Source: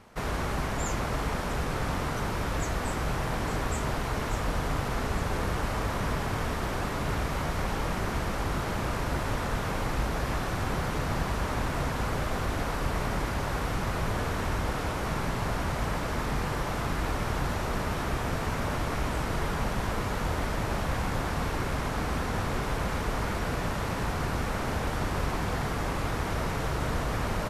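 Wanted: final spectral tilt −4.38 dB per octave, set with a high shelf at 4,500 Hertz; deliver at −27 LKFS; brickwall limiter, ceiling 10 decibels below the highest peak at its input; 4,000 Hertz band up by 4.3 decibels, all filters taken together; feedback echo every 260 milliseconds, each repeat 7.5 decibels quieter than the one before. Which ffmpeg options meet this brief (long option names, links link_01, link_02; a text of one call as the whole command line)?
ffmpeg -i in.wav -af "equalizer=frequency=4000:width_type=o:gain=3.5,highshelf=frequency=4500:gain=4,alimiter=level_in=0.5dB:limit=-24dB:level=0:latency=1,volume=-0.5dB,aecho=1:1:260|520|780|1040|1300:0.422|0.177|0.0744|0.0312|0.0131,volume=6dB" out.wav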